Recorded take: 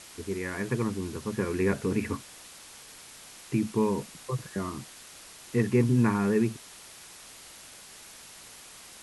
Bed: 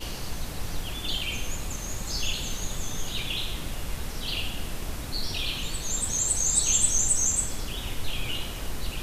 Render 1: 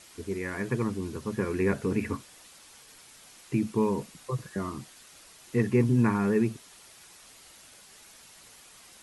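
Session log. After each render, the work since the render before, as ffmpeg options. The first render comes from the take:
-af "afftdn=nr=6:nf=-49"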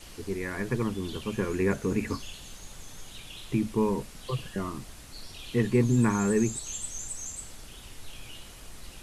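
-filter_complex "[1:a]volume=-14dB[a];[0:a][a]amix=inputs=2:normalize=0"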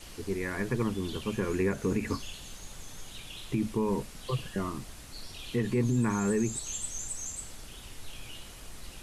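-af "alimiter=limit=-19dB:level=0:latency=1:release=86"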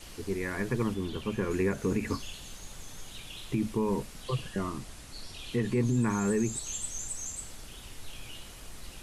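-filter_complex "[0:a]asettb=1/sr,asplit=3[a][b][c];[a]atrim=end=0.944[d];[b]atrim=start=0.94:end=1.51,asetpts=PTS-STARTPTS,afade=t=in:d=0.004:c=qsin,afade=t=out:st=0.566:d=0.004:c=qsin,acrossover=split=3300[e][f];[f]acompressor=threshold=-52dB:ratio=4:attack=1:release=60[g];[e][g]amix=inputs=2:normalize=0[h];[c]atrim=start=1.506[i];[d][h]acrossfade=d=0.004:c1=hsin:c2=qsin[j];[j][i]acrossfade=d=0.004:c1=qsin:c2=hsin,asettb=1/sr,asplit=3[k][l][m];[k]atrim=end=4.244[n];[l]atrim=start=4.24:end=6.07,asetpts=PTS-STARTPTS,afade=t=in:d=0.004:c=qsin,afade=t=out:st=1.826:d=0.004:c=qsin,lowpass=f=12k:w=0.5412,lowpass=f=12k:w=1.3066[o];[m]atrim=start=6.066[p];[n][o]acrossfade=d=0.004:c1=hsin:c2=qsin[q];[q][p]acrossfade=d=0.004:c1=qsin:c2=hsin"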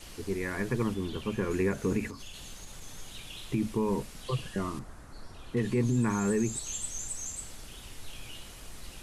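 -filter_complex "[0:a]asettb=1/sr,asplit=3[a][b][c];[a]atrim=end=2.074[d];[b]atrim=start=2.07:end=2.82,asetpts=PTS-STARTPTS,afade=t=in:d=0.004:c=qsin,afade=t=out:st=0.746:d=0.004:c=qsin,acompressor=threshold=-38dB:ratio=8:attack=3.2:release=140:knee=1:detection=peak[e];[c]atrim=start=2.816[f];[d][e]acrossfade=d=0.004:c1=hsin:c2=qsin[g];[g][f]acrossfade=d=0.004:c1=qsin:c2=hsin,asettb=1/sr,asplit=3[h][i][j];[h]atrim=end=4.794[k];[i]atrim=start=4.79:end=5.57,asetpts=PTS-STARTPTS,afade=t=in:d=0.004:c=qsin,afade=t=out:st=0.776:d=0.004:c=qsin,highshelf=f=2k:t=q:w=1.5:g=-10.5[l];[j]atrim=start=5.566[m];[k][l]acrossfade=d=0.004:c1=hsin:c2=qsin[n];[n][m]acrossfade=d=0.004:c1=qsin:c2=hsin"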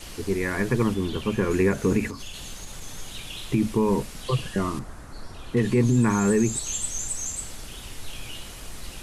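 -af "volume=7dB"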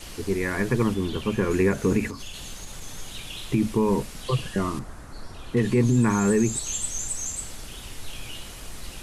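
-af anull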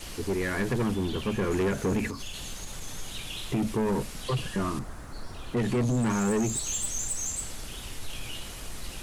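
-af "acrusher=bits=10:mix=0:aa=0.000001,asoftclip=type=tanh:threshold=-22dB"

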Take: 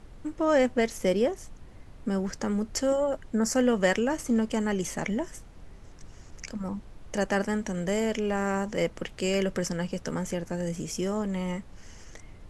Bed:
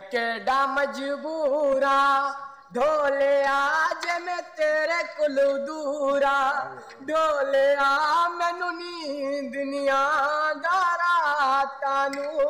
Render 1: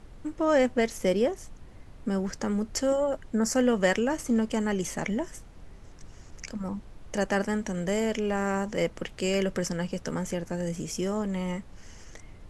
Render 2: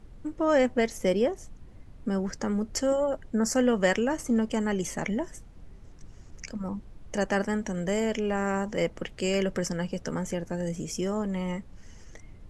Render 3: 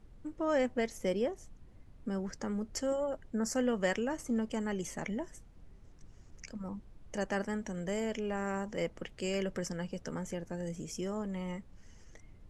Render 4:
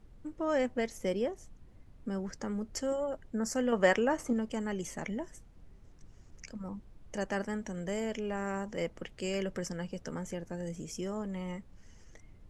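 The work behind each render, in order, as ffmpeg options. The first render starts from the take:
-af anull
-af "afftdn=nr=6:nf=-49"
-af "volume=-7.5dB"
-filter_complex "[0:a]asettb=1/sr,asplit=3[a][b][c];[a]atrim=end=3.724[d];[b]atrim=start=3.72:end=4.33,asetpts=PTS-STARTPTS,afade=t=in:d=0.004:c=qsin,afade=t=out:st=0.606:d=0.004:c=qsin,equalizer=f=920:w=0.37:g=8[e];[c]atrim=start=4.326[f];[d][e]acrossfade=d=0.004:c1=hsin:c2=qsin[g];[g][f]acrossfade=d=0.004:c1=qsin:c2=hsin"

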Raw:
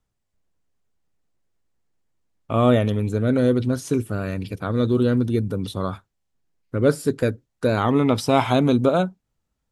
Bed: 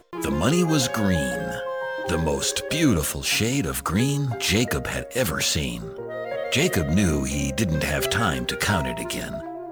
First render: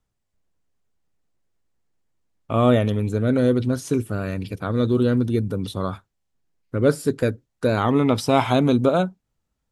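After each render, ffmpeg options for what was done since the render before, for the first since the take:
-af anull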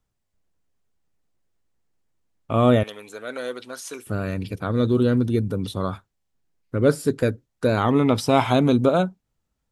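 -filter_complex "[0:a]asettb=1/sr,asplit=3[a][b][c];[a]atrim=end=2.834[d];[b]atrim=start=2.83:end=4.07,asetpts=PTS-STARTPTS,afade=t=in:d=0.004:c=qsin,afade=t=out:st=1.236:d=0.004:c=qsin,highpass=820[e];[c]atrim=start=4.066[f];[d][e]acrossfade=d=0.004:c1=hsin:c2=qsin[g];[g][f]acrossfade=d=0.004:c1=qsin:c2=hsin"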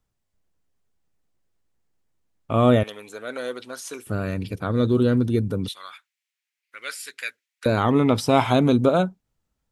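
-filter_complex "[0:a]asettb=1/sr,asplit=3[a][b][c];[a]atrim=end=5.684[d];[b]atrim=start=5.68:end=7.66,asetpts=PTS-STARTPTS,afade=t=in:d=0.004:c=qsin,afade=t=out:st=1.976:d=0.004:c=qsin,highpass=f=2.2k:t=q:w=2.7[e];[c]atrim=start=7.656[f];[d][e]acrossfade=d=0.004:c1=hsin:c2=qsin[g];[g][f]acrossfade=d=0.004:c1=qsin:c2=hsin"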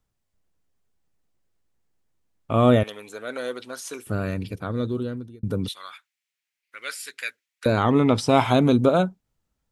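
-filter_complex "[0:a]asettb=1/sr,asplit=3[a][b][c];[a]atrim=end=7.734[d];[b]atrim=start=7.73:end=8.29,asetpts=PTS-STARTPTS,afade=t=in:d=0.004:c=qsin,afade=t=out:st=0.556:d=0.004:c=qsin,lowpass=f=10k:w=0.5412,lowpass=f=10k:w=1.3066[e];[c]atrim=start=8.286[f];[d][e]acrossfade=d=0.004:c1=hsin:c2=qsin[g];[g][f]acrossfade=d=0.004:c1=qsin:c2=hsin,asplit=2[h][i];[h]atrim=end=5.43,asetpts=PTS-STARTPTS,afade=t=out:st=4.25:d=1.18[j];[i]atrim=start=5.43,asetpts=PTS-STARTPTS,afade=t=in:d=0.004:c=hsin[k];[j][k]concat=n=2:v=0:a=1"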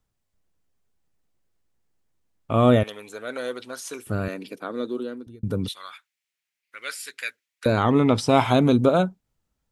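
-filter_complex "[0:a]asettb=1/sr,asplit=3[a][b][c];[a]atrim=end=4.284[d];[b]atrim=start=4.28:end=5.27,asetpts=PTS-STARTPTS,afade=t=in:d=0.004:c=qsin,afade=t=out:st=0.986:d=0.004:c=qsin,highpass=f=250:w=0.5412,highpass=f=250:w=1.3066[e];[c]atrim=start=5.266[f];[d][e]acrossfade=d=0.004:c1=hsin:c2=qsin[g];[g][f]acrossfade=d=0.004:c1=qsin:c2=hsin"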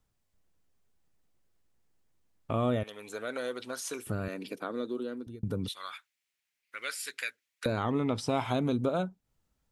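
-af "acompressor=threshold=-35dB:ratio=2"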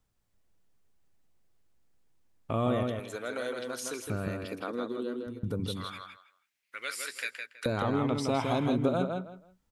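-filter_complex "[0:a]asplit=2[a][b];[b]adelay=162,lowpass=f=4.2k:p=1,volume=-4dB,asplit=2[c][d];[d]adelay=162,lowpass=f=4.2k:p=1,volume=0.23,asplit=2[e][f];[f]adelay=162,lowpass=f=4.2k:p=1,volume=0.23[g];[a][c][e][g]amix=inputs=4:normalize=0"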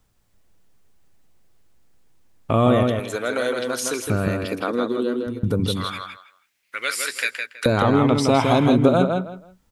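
-af "volume=11.5dB"

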